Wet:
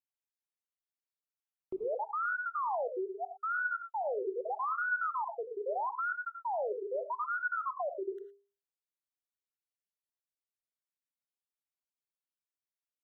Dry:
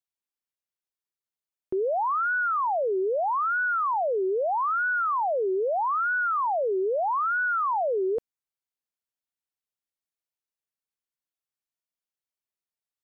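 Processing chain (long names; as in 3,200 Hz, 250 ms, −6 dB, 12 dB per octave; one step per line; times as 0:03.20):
time-frequency cells dropped at random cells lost 41%
mains-hum notches 50/100/150/200/250/300/350/400/450 Hz
reverb whose tail is shaped and stops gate 130 ms rising, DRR 7 dB
level −8 dB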